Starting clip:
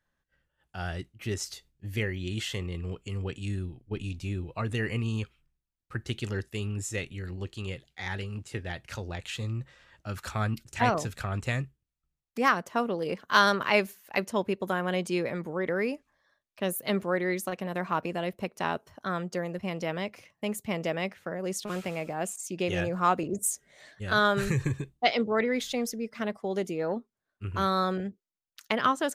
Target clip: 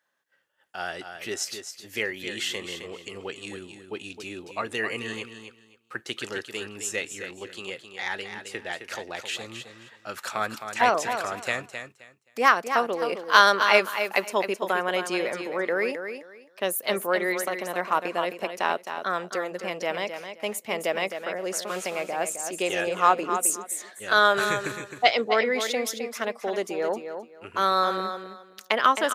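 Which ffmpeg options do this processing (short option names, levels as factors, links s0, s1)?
-filter_complex "[0:a]highpass=430,asplit=2[s0][s1];[s1]aecho=0:1:263|526|789:0.376|0.0789|0.0166[s2];[s0][s2]amix=inputs=2:normalize=0,volume=1.88"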